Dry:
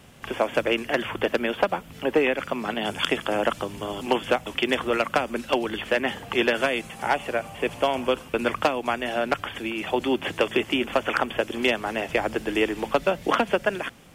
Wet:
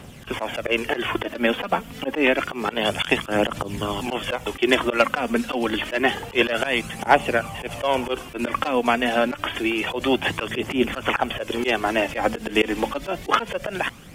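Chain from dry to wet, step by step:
phase shifter 0.28 Hz, delay 4.5 ms, feedback 43%
volume swells 102 ms
level +5.5 dB

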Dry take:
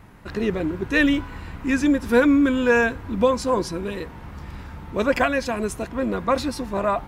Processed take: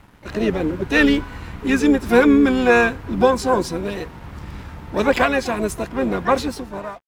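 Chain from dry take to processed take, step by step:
fade-out on the ending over 0.74 s
dead-zone distortion −50.5 dBFS
pitch-shifted copies added −5 semitones −15 dB, +7 semitones −10 dB
level +3 dB

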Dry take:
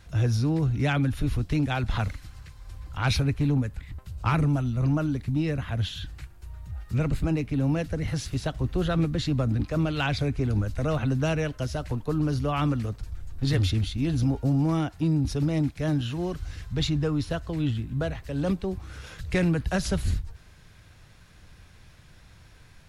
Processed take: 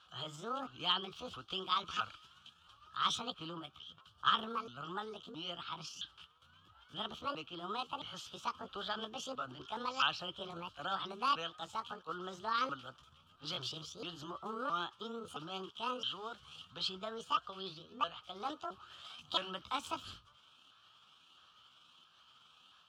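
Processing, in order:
pitch shifter swept by a sawtooth +10.5 semitones, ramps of 668 ms
pair of resonant band-passes 2,000 Hz, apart 1.3 octaves
level +6 dB

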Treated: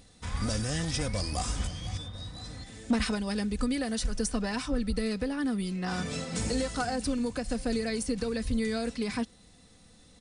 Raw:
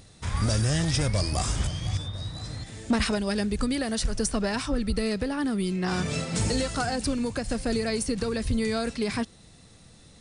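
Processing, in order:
comb filter 4 ms, depth 45%
level −5 dB

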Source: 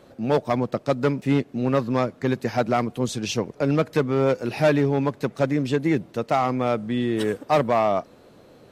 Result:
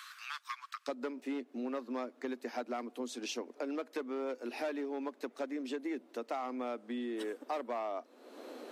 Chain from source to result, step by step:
Chebyshev high-pass filter 1,100 Hz, order 6, from 0:00.87 240 Hz
downward compressor 3 to 1, threshold −59 dBFS, peak gain reduction 31 dB
level +12 dB

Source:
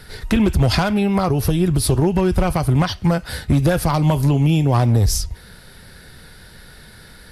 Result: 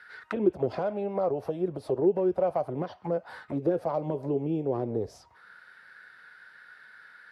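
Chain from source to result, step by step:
high-pass filter 100 Hz
envelope filter 380–1,600 Hz, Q 3.8, down, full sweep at −11.5 dBFS

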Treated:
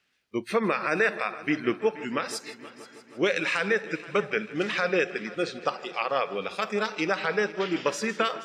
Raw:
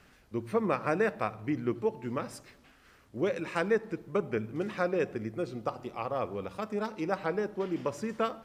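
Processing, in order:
meter weighting curve D
surface crackle 180 per second −52 dBFS
dynamic equaliser 1,500 Hz, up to +4 dB, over −43 dBFS, Q 1.7
brickwall limiter −18.5 dBFS, peak gain reduction 10.5 dB
noise reduction from a noise print of the clip's start 23 dB
on a send: echo machine with several playback heads 159 ms, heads first and third, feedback 62%, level −19 dB
on the sum: level +5.5 dB

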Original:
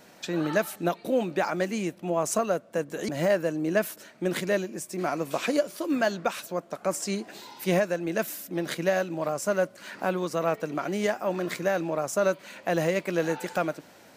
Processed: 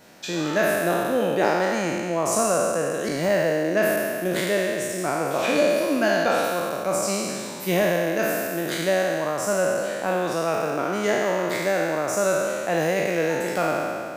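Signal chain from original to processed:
peak hold with a decay on every bin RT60 2.22 s

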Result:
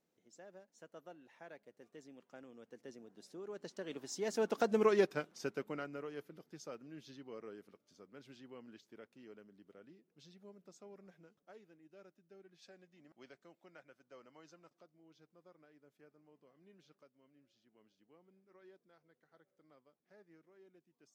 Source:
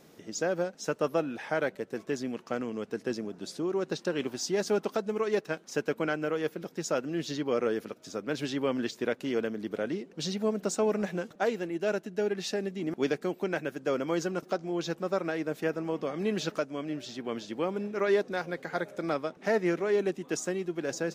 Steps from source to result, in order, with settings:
source passing by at 0:04.82, 24 m/s, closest 4.6 metres
gain on a spectral selection 0:12.63–0:14.81, 500–8,600 Hz +7 dB
level +1 dB

